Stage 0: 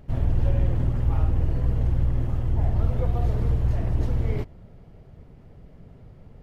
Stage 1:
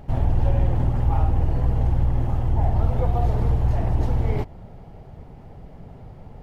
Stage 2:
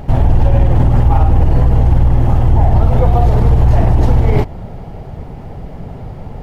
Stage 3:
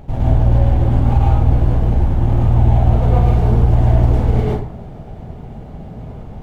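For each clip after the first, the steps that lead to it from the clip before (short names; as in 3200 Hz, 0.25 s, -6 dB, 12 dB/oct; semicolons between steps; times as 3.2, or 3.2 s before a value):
bell 820 Hz +9.5 dB 0.53 oct; in parallel at -1.5 dB: compressor, threshold -28 dBFS, peak gain reduction 12.5 dB
maximiser +14.5 dB; gain -1 dB
median filter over 25 samples; plate-style reverb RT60 0.56 s, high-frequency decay 0.65×, pre-delay 95 ms, DRR -5 dB; gain -9 dB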